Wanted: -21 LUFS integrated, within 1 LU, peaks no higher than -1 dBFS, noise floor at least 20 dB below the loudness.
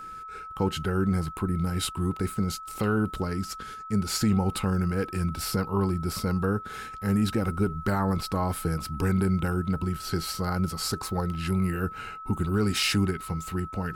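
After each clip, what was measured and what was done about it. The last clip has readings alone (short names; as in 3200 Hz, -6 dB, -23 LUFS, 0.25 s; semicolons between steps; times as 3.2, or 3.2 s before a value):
steady tone 1300 Hz; tone level -38 dBFS; loudness -28.0 LUFS; peak -15.0 dBFS; loudness target -21.0 LUFS
-> notch 1300 Hz, Q 30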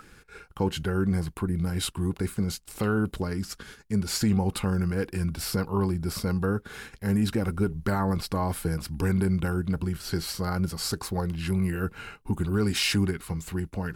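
steady tone none; loudness -28.5 LUFS; peak -15.5 dBFS; loudness target -21.0 LUFS
-> gain +7.5 dB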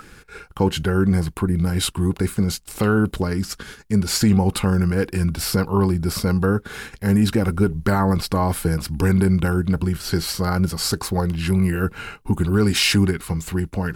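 loudness -21.0 LUFS; peak -8.0 dBFS; noise floor -47 dBFS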